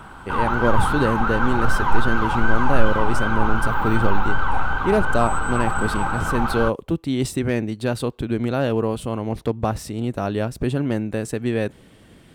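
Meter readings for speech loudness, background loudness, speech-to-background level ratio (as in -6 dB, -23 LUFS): -24.5 LUFS, -23.5 LUFS, -1.0 dB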